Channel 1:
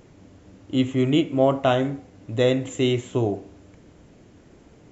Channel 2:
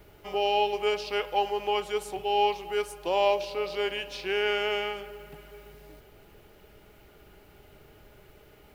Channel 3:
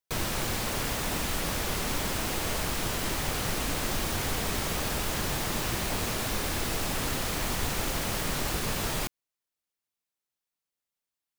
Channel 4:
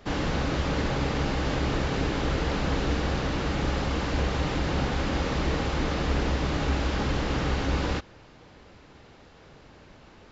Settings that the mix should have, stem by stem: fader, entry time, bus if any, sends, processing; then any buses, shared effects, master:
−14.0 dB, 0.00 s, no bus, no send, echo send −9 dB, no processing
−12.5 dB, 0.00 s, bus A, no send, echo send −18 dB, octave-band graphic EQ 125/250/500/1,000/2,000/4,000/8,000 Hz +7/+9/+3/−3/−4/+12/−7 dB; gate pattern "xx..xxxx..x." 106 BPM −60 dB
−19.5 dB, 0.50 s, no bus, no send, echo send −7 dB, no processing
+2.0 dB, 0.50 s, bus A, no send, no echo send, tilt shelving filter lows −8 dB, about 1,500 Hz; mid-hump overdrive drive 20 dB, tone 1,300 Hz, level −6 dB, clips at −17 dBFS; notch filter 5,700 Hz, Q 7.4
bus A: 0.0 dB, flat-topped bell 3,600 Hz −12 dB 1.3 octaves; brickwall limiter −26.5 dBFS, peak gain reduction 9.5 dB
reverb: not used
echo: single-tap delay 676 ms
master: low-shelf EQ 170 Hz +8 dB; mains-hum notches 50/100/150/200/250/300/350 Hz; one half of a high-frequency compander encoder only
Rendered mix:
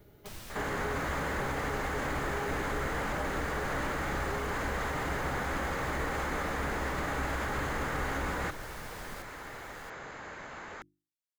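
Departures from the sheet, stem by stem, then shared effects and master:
stem 1: muted
stem 3: entry 0.50 s → 0.15 s

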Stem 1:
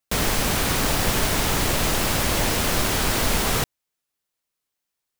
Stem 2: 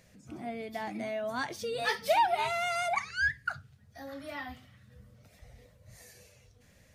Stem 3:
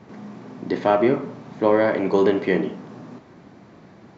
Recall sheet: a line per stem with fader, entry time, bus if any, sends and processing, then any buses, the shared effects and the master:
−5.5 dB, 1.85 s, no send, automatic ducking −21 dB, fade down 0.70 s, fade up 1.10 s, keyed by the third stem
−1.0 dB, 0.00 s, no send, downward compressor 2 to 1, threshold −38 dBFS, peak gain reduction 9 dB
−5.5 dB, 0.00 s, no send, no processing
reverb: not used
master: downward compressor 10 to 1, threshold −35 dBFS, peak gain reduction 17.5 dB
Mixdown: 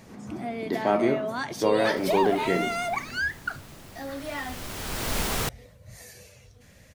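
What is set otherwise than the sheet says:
stem 2 −1.0 dB → +7.5 dB
master: missing downward compressor 10 to 1, threshold −35 dBFS, peak gain reduction 17.5 dB

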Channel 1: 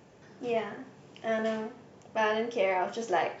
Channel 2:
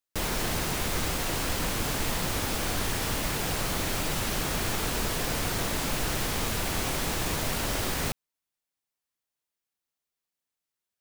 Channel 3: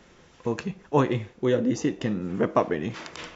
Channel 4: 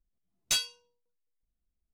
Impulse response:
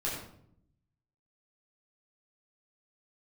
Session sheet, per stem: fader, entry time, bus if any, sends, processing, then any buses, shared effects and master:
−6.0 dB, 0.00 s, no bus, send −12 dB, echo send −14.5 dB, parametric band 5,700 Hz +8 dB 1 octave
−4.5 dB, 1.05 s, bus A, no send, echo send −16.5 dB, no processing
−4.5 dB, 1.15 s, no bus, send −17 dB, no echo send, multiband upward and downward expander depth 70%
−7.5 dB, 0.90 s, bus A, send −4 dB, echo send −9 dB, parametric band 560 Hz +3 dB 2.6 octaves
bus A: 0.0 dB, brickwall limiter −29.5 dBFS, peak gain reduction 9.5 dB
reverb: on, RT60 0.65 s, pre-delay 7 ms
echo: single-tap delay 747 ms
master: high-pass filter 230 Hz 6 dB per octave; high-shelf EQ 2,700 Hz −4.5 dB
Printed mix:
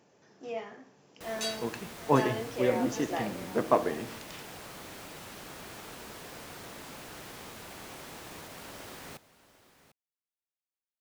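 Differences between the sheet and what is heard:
stem 1: send off
stem 2 −4.5 dB → −12.5 dB

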